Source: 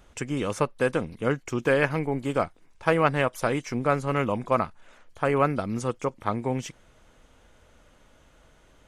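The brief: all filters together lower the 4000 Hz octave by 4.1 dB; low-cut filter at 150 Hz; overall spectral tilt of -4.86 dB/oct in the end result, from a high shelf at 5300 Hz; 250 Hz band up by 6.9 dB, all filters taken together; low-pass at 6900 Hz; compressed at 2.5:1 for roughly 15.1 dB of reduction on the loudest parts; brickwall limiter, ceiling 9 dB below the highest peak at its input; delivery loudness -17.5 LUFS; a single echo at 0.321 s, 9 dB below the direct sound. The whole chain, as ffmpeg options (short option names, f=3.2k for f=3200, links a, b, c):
-af "highpass=150,lowpass=6.9k,equalizer=f=250:t=o:g=9,equalizer=f=4k:t=o:g=-4,highshelf=f=5.3k:g=-5,acompressor=threshold=-39dB:ratio=2.5,alimiter=level_in=3dB:limit=-24dB:level=0:latency=1,volume=-3dB,aecho=1:1:321:0.355,volume=21.5dB"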